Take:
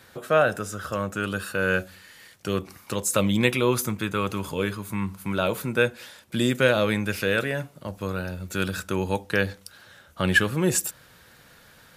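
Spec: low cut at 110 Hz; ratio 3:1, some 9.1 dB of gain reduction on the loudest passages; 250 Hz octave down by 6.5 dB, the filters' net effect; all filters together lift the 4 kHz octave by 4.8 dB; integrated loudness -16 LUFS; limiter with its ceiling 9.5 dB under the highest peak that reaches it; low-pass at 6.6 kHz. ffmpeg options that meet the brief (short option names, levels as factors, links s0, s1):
-af "highpass=110,lowpass=6600,equalizer=f=250:t=o:g=-9,equalizer=f=4000:t=o:g=6.5,acompressor=threshold=0.0501:ratio=3,volume=7.08,alimiter=limit=0.708:level=0:latency=1"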